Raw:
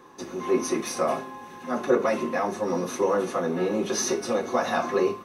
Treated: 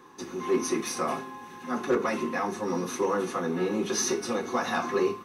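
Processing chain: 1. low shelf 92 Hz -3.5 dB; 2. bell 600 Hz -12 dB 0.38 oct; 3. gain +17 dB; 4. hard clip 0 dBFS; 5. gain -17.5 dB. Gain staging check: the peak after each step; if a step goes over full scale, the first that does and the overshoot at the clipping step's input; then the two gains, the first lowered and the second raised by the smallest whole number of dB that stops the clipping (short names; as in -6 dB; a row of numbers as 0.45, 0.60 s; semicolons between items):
-9.5, -10.5, +6.5, 0.0, -17.5 dBFS; step 3, 6.5 dB; step 3 +10 dB, step 5 -10.5 dB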